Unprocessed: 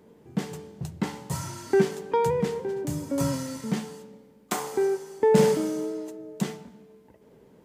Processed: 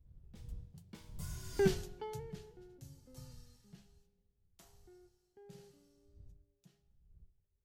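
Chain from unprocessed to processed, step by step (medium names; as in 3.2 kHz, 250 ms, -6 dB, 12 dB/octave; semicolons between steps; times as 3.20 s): wind noise 89 Hz -35 dBFS; Doppler pass-by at 1.65 s, 29 m/s, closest 3.6 m; ten-band graphic EQ 250 Hz -12 dB, 500 Hz -7 dB, 1 kHz -11 dB, 2 kHz -7 dB, 8 kHz -5 dB; trim +1 dB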